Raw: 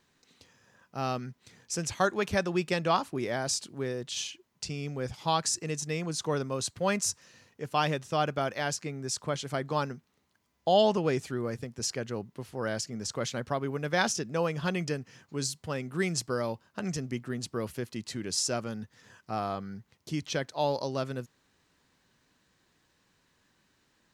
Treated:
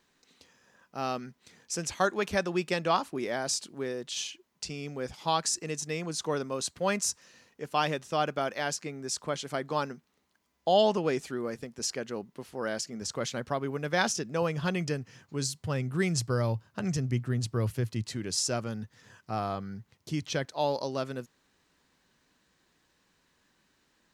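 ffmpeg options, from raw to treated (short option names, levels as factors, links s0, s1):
-af "asetnsamples=n=441:p=0,asendcmd='13.02 equalizer g -3;14.42 equalizer g 4.5;15.64 equalizer g 13.5;18.02 equalizer g 4;20.45 equalizer g -6',equalizer=f=110:t=o:w=0.7:g=-11.5"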